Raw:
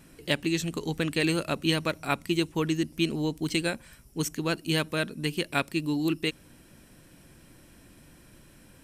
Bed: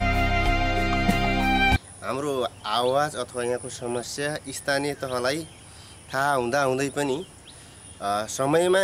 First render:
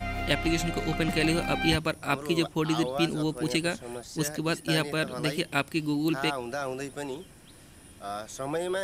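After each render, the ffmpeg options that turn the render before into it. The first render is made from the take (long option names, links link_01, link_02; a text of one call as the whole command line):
ffmpeg -i in.wav -i bed.wav -filter_complex "[1:a]volume=-10dB[link_01];[0:a][link_01]amix=inputs=2:normalize=0" out.wav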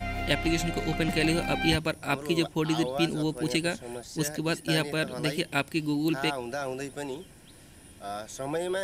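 ffmpeg -i in.wav -af "bandreject=frequency=1200:width=6.1" out.wav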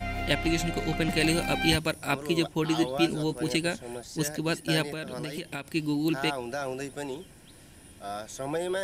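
ffmpeg -i in.wav -filter_complex "[0:a]asettb=1/sr,asplit=3[link_01][link_02][link_03];[link_01]atrim=end=1.174[link_04];[link_02]atrim=start=1.17:end=2.11,asetpts=PTS-STARTPTS,afade=type=in:duration=0.004:curve=qsin,afade=type=out:start_time=0.936:duration=0.004:curve=qsin,highshelf=frequency=5000:gain=6.5[link_05];[link_03]atrim=start=2.106[link_06];[link_04][link_05]acrossfade=duration=0.004:curve1=hsin:curve2=qsin[link_07];[link_07][link_06]acrossfade=duration=0.004:curve1=qsin:curve2=hsin,asettb=1/sr,asplit=3[link_08][link_09][link_10];[link_08]atrim=end=2.624[link_11];[link_09]atrim=start=2.62:end=3.51,asetpts=PTS-STARTPTS,afade=type=in:duration=0.004:curve=qsin,afade=type=out:start_time=0.886:duration=0.004:curve=qsin,asplit=2[link_12][link_13];[link_13]adelay=15,volume=-8dB[link_14];[link_12][link_14]amix=inputs=2:normalize=0,atrim=end_sample=39249[link_15];[link_10]atrim=start=3.506[link_16];[link_11][link_15]acrossfade=duration=0.004:curve1=hsin:curve2=qsin[link_17];[link_17][link_16]acrossfade=duration=0.004:curve1=qsin:curve2=hsin,asettb=1/sr,asplit=3[link_18][link_19][link_20];[link_18]atrim=end=4.824[link_21];[link_19]atrim=start=4.82:end=5.73,asetpts=PTS-STARTPTS,afade=type=in:duration=0.004:curve=qsin,afade=type=out:start_time=0.906:duration=0.004:curve=qsin,acompressor=threshold=-30dB:ratio=12:attack=3.2:release=140:knee=1:detection=peak[link_22];[link_20]atrim=start=5.726[link_23];[link_21][link_22]acrossfade=duration=0.004:curve1=hsin:curve2=qsin[link_24];[link_24][link_23]acrossfade=duration=0.004:curve1=qsin:curve2=hsin" out.wav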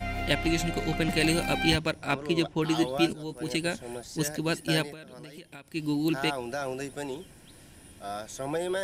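ffmpeg -i in.wav -filter_complex "[0:a]asettb=1/sr,asplit=3[link_01][link_02][link_03];[link_01]atrim=end=1.634[link_04];[link_02]atrim=start=1.63:end=2.62,asetpts=PTS-STARTPTS,afade=type=in:duration=0.004:curve=qsin,afade=type=out:start_time=0.986:duration=0.004:curve=qsin,adynamicsmooth=sensitivity=4.5:basefreq=5000[link_05];[link_03]atrim=start=2.616[link_06];[link_04][link_05]acrossfade=duration=0.004:curve1=hsin:curve2=qsin[link_07];[link_07][link_06]acrossfade=duration=0.004:curve1=qsin:curve2=hsin,asplit=4[link_08][link_09][link_10][link_11];[link_08]atrim=end=3.13,asetpts=PTS-STARTPTS,afade=type=out:start_time=3.126:duration=0.004:curve=hsin:silence=0.223872[link_12];[link_09]atrim=start=3.13:end=4.97,asetpts=PTS-STARTPTS,afade=type=in:duration=0.62:silence=0.223872,afade=type=out:start_time=1.65:duration=0.19:silence=0.316228[link_13];[link_10]atrim=start=4.97:end=5.69,asetpts=PTS-STARTPTS,volume=-10dB[link_14];[link_11]atrim=start=5.69,asetpts=PTS-STARTPTS,afade=type=in:duration=0.19:silence=0.316228[link_15];[link_12][link_13][link_14][link_15]concat=n=4:v=0:a=1" out.wav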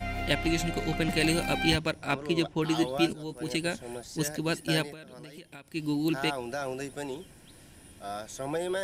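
ffmpeg -i in.wav -af "volume=-1dB" out.wav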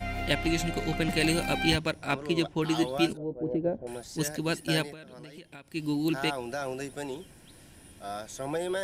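ffmpeg -i in.wav -filter_complex "[0:a]asettb=1/sr,asplit=3[link_01][link_02][link_03];[link_01]atrim=end=3.174[link_04];[link_02]atrim=start=3.17:end=3.87,asetpts=PTS-STARTPTS,afade=type=in:duration=0.004:curve=qsin,afade=type=out:start_time=0.696:duration=0.004:curve=qsin,lowpass=frequency=550:width_type=q:width=2[link_05];[link_03]atrim=start=3.866[link_06];[link_04][link_05]acrossfade=duration=0.004:curve1=hsin:curve2=qsin[link_07];[link_07][link_06]acrossfade=duration=0.004:curve1=qsin:curve2=hsin,asettb=1/sr,asplit=3[link_08][link_09][link_10];[link_08]atrim=end=4.914[link_11];[link_09]atrim=start=4.91:end=5.7,asetpts=PTS-STARTPTS,afade=type=in:duration=0.004:curve=qsin,afade=type=out:start_time=0.786:duration=0.004:curve=qsin,highshelf=frequency=8900:gain=-8[link_12];[link_10]atrim=start=5.696[link_13];[link_11][link_12]acrossfade=duration=0.004:curve1=hsin:curve2=qsin[link_14];[link_14][link_13]acrossfade=duration=0.004:curve1=qsin:curve2=hsin" out.wav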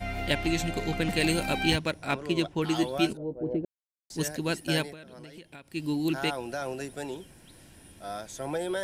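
ffmpeg -i in.wav -filter_complex "[0:a]asplit=3[link_01][link_02][link_03];[link_01]atrim=end=3.65,asetpts=PTS-STARTPTS,afade=type=out:start_time=3.646:duration=0.004:curve=hsin[link_04];[link_02]atrim=start=3.65:end=4.1,asetpts=PTS-STARTPTS,volume=0[link_05];[link_03]atrim=start=4.1,asetpts=PTS-STARTPTS,afade=type=in:duration=0.004:curve=hsin[link_06];[link_04][link_05][link_06]concat=n=3:v=0:a=1" out.wav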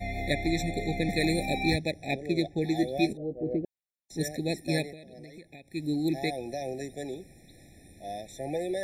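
ffmpeg -i in.wav -af "afftfilt=real='re*eq(mod(floor(b*sr/1024/860),2),0)':imag='im*eq(mod(floor(b*sr/1024/860),2),0)':win_size=1024:overlap=0.75" out.wav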